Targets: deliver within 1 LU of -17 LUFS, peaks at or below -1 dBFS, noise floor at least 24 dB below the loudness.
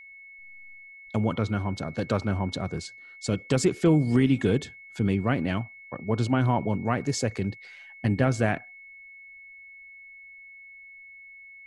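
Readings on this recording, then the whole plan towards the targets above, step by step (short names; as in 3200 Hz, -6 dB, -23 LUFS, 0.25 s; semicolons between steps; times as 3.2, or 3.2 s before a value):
steady tone 2200 Hz; tone level -45 dBFS; loudness -26.5 LUFS; peak -8.5 dBFS; loudness target -17.0 LUFS
-> notch 2200 Hz, Q 30; gain +9.5 dB; limiter -1 dBFS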